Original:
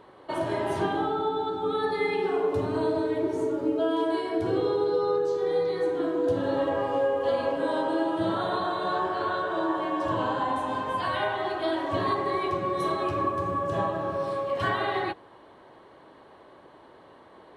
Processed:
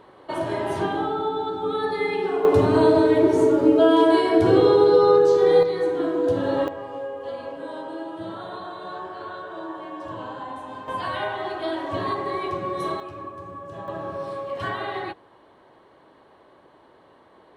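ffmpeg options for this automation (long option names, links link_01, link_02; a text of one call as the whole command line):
ffmpeg -i in.wav -af "asetnsamples=nb_out_samples=441:pad=0,asendcmd='2.45 volume volume 10dB;5.63 volume volume 3.5dB;6.68 volume volume -7dB;10.88 volume volume 0dB;13 volume volume -9.5dB;13.88 volume volume -2dB',volume=2dB" out.wav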